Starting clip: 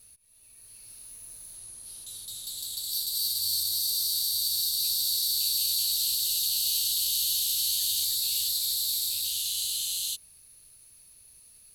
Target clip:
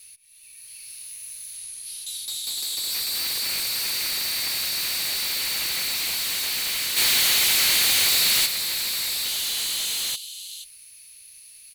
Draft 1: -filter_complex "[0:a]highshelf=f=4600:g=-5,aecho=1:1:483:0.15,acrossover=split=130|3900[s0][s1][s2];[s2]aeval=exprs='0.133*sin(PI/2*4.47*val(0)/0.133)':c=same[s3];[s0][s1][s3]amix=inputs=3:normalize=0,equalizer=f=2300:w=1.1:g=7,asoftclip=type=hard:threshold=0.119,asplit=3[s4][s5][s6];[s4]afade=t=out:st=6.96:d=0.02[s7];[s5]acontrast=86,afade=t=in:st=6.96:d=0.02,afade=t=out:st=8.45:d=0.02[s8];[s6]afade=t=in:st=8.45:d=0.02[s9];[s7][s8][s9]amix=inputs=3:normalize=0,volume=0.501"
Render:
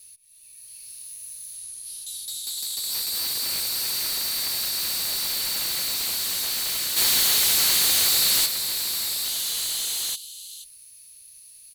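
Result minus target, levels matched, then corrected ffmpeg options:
2 kHz band -5.5 dB
-filter_complex "[0:a]highshelf=f=4600:g=-5,aecho=1:1:483:0.15,acrossover=split=130|3900[s0][s1][s2];[s2]aeval=exprs='0.133*sin(PI/2*4.47*val(0)/0.133)':c=same[s3];[s0][s1][s3]amix=inputs=3:normalize=0,equalizer=f=2300:w=1.1:g=17.5,asoftclip=type=hard:threshold=0.119,asplit=3[s4][s5][s6];[s4]afade=t=out:st=6.96:d=0.02[s7];[s5]acontrast=86,afade=t=in:st=6.96:d=0.02,afade=t=out:st=8.45:d=0.02[s8];[s6]afade=t=in:st=8.45:d=0.02[s9];[s7][s8][s9]amix=inputs=3:normalize=0,volume=0.501"

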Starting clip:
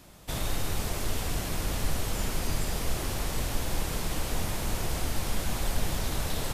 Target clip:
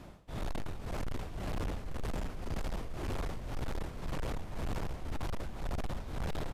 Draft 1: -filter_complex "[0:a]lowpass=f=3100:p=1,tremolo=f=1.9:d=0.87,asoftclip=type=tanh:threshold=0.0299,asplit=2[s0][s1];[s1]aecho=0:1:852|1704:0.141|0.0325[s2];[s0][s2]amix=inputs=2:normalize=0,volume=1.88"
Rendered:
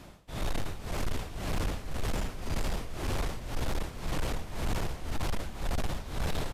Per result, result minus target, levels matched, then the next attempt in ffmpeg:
4 kHz band +4.0 dB; saturation: distortion -4 dB
-filter_complex "[0:a]lowpass=f=1300:p=1,tremolo=f=1.9:d=0.87,asoftclip=type=tanh:threshold=0.0299,asplit=2[s0][s1];[s1]aecho=0:1:852|1704:0.141|0.0325[s2];[s0][s2]amix=inputs=2:normalize=0,volume=1.88"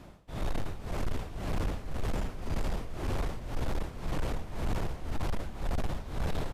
saturation: distortion -4 dB
-filter_complex "[0:a]lowpass=f=1300:p=1,tremolo=f=1.9:d=0.87,asoftclip=type=tanh:threshold=0.0133,asplit=2[s0][s1];[s1]aecho=0:1:852|1704:0.141|0.0325[s2];[s0][s2]amix=inputs=2:normalize=0,volume=1.88"

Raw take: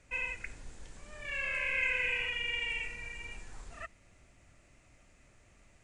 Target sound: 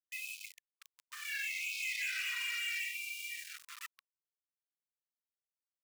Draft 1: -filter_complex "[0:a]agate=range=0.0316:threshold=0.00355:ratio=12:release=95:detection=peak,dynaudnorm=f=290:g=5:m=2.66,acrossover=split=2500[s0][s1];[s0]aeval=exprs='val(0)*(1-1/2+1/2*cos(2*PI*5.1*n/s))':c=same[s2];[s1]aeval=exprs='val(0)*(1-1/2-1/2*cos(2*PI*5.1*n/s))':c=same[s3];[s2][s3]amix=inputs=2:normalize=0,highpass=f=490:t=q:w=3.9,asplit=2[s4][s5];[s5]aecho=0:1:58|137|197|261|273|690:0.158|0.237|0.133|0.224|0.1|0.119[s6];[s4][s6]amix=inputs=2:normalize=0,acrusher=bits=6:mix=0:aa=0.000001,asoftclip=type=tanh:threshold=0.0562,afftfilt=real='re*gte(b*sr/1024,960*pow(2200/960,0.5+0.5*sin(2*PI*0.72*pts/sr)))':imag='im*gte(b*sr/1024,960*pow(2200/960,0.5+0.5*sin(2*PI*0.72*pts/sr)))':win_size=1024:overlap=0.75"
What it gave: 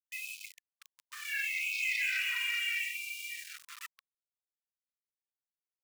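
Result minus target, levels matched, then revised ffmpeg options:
saturation: distortion -7 dB
-filter_complex "[0:a]agate=range=0.0316:threshold=0.00355:ratio=12:release=95:detection=peak,dynaudnorm=f=290:g=5:m=2.66,acrossover=split=2500[s0][s1];[s0]aeval=exprs='val(0)*(1-1/2+1/2*cos(2*PI*5.1*n/s))':c=same[s2];[s1]aeval=exprs='val(0)*(1-1/2-1/2*cos(2*PI*5.1*n/s))':c=same[s3];[s2][s3]amix=inputs=2:normalize=0,highpass=f=490:t=q:w=3.9,asplit=2[s4][s5];[s5]aecho=0:1:58|137|197|261|273|690:0.158|0.237|0.133|0.224|0.1|0.119[s6];[s4][s6]amix=inputs=2:normalize=0,acrusher=bits=6:mix=0:aa=0.000001,asoftclip=type=tanh:threshold=0.0211,afftfilt=real='re*gte(b*sr/1024,960*pow(2200/960,0.5+0.5*sin(2*PI*0.72*pts/sr)))':imag='im*gte(b*sr/1024,960*pow(2200/960,0.5+0.5*sin(2*PI*0.72*pts/sr)))':win_size=1024:overlap=0.75"

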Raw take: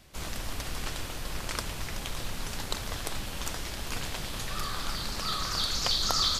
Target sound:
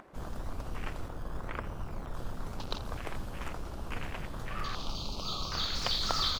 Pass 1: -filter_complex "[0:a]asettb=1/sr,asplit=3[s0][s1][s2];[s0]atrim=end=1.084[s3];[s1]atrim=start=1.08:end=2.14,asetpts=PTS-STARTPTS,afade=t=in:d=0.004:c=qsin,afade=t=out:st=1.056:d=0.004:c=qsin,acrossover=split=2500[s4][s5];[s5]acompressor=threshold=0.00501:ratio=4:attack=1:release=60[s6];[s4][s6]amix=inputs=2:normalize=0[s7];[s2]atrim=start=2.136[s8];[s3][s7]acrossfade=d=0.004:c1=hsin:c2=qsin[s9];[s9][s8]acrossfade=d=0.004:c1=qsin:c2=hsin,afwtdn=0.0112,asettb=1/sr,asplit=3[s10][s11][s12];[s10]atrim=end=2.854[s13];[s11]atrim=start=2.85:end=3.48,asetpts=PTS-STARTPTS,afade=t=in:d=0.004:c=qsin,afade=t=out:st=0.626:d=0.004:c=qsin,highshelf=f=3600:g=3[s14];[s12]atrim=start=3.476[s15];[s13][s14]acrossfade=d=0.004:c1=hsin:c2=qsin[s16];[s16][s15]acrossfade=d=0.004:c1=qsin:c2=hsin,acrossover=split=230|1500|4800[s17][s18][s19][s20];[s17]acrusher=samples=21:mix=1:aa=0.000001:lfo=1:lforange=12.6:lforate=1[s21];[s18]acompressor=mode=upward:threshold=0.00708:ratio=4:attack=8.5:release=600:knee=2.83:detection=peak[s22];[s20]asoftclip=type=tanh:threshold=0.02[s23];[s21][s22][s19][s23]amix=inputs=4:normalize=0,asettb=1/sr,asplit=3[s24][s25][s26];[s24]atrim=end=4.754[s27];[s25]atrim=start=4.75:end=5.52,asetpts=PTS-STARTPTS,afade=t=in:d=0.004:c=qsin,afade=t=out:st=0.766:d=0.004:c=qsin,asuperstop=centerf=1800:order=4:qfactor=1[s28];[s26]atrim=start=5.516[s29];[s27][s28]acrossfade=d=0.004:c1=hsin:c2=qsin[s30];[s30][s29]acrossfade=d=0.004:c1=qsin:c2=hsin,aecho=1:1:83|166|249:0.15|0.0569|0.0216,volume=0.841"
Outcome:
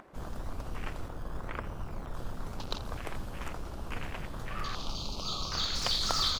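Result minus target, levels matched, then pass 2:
saturation: distortion -8 dB
-filter_complex "[0:a]asettb=1/sr,asplit=3[s0][s1][s2];[s0]atrim=end=1.084[s3];[s1]atrim=start=1.08:end=2.14,asetpts=PTS-STARTPTS,afade=t=in:d=0.004:c=qsin,afade=t=out:st=1.056:d=0.004:c=qsin,acrossover=split=2500[s4][s5];[s5]acompressor=threshold=0.00501:ratio=4:attack=1:release=60[s6];[s4][s6]amix=inputs=2:normalize=0[s7];[s2]atrim=start=2.136[s8];[s3][s7]acrossfade=d=0.004:c1=hsin:c2=qsin[s9];[s9][s8]acrossfade=d=0.004:c1=qsin:c2=hsin,afwtdn=0.0112,asettb=1/sr,asplit=3[s10][s11][s12];[s10]atrim=end=2.854[s13];[s11]atrim=start=2.85:end=3.48,asetpts=PTS-STARTPTS,afade=t=in:d=0.004:c=qsin,afade=t=out:st=0.626:d=0.004:c=qsin,highshelf=f=3600:g=3[s14];[s12]atrim=start=3.476[s15];[s13][s14]acrossfade=d=0.004:c1=hsin:c2=qsin[s16];[s16][s15]acrossfade=d=0.004:c1=qsin:c2=hsin,acrossover=split=230|1500|4800[s17][s18][s19][s20];[s17]acrusher=samples=21:mix=1:aa=0.000001:lfo=1:lforange=12.6:lforate=1[s21];[s18]acompressor=mode=upward:threshold=0.00708:ratio=4:attack=8.5:release=600:knee=2.83:detection=peak[s22];[s20]asoftclip=type=tanh:threshold=0.00531[s23];[s21][s22][s19][s23]amix=inputs=4:normalize=0,asettb=1/sr,asplit=3[s24][s25][s26];[s24]atrim=end=4.754[s27];[s25]atrim=start=4.75:end=5.52,asetpts=PTS-STARTPTS,afade=t=in:d=0.004:c=qsin,afade=t=out:st=0.766:d=0.004:c=qsin,asuperstop=centerf=1800:order=4:qfactor=1[s28];[s26]atrim=start=5.516[s29];[s27][s28]acrossfade=d=0.004:c1=hsin:c2=qsin[s30];[s30][s29]acrossfade=d=0.004:c1=qsin:c2=hsin,aecho=1:1:83|166|249:0.15|0.0569|0.0216,volume=0.841"

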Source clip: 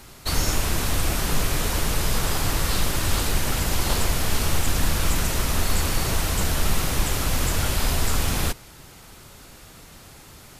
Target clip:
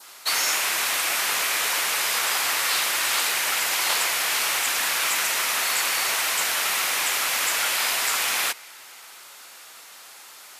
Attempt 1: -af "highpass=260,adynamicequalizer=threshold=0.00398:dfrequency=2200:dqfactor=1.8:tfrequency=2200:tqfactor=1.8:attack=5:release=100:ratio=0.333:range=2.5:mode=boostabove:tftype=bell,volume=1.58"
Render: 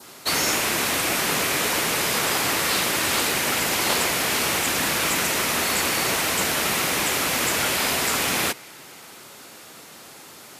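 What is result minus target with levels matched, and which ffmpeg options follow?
250 Hz band +17.0 dB
-af "highpass=880,adynamicequalizer=threshold=0.00398:dfrequency=2200:dqfactor=1.8:tfrequency=2200:tqfactor=1.8:attack=5:release=100:ratio=0.333:range=2.5:mode=boostabove:tftype=bell,volume=1.58"

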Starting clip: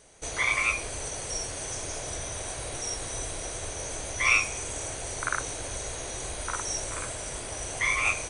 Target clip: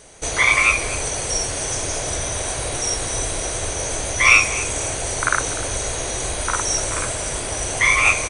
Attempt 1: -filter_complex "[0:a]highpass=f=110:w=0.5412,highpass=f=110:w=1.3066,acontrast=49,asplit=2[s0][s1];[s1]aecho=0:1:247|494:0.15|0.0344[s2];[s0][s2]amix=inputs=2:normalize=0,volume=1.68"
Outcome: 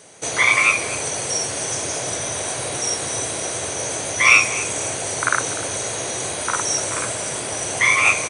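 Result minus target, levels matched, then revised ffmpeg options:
125 Hz band -4.5 dB
-filter_complex "[0:a]acontrast=49,asplit=2[s0][s1];[s1]aecho=0:1:247|494:0.15|0.0344[s2];[s0][s2]amix=inputs=2:normalize=0,volume=1.68"

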